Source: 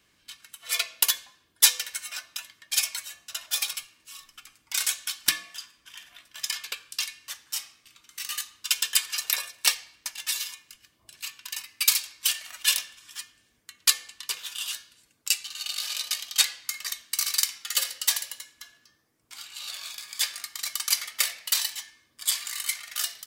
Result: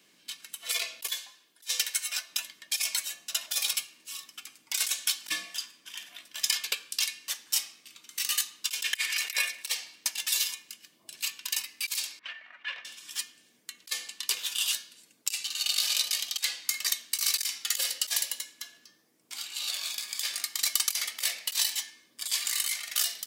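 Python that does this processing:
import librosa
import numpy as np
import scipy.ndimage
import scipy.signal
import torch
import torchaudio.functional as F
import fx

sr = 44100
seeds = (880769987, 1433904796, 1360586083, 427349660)

y = fx.low_shelf(x, sr, hz=420.0, db=-12.0, at=(1.09, 2.3))
y = fx.peak_eq(y, sr, hz=2100.0, db=13.5, octaves=0.77, at=(8.84, 9.63))
y = fx.ladder_lowpass(y, sr, hz=2200.0, resonance_pct=40, at=(12.19, 12.85))
y = scipy.signal.sosfilt(scipy.signal.butter(4, 170.0, 'highpass', fs=sr, output='sos'), y)
y = fx.peak_eq(y, sr, hz=1300.0, db=-6.0, octaves=1.2)
y = fx.over_compress(y, sr, threshold_db=-29.0, ratio=-0.5)
y = y * 10.0 ** (1.5 / 20.0)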